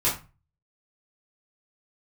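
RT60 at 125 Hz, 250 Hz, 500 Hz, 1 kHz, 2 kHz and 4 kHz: 0.55, 0.40, 0.30, 0.30, 0.30, 0.25 seconds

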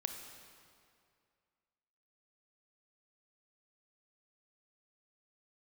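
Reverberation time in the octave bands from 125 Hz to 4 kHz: 2.3, 2.2, 2.3, 2.3, 2.0, 1.8 seconds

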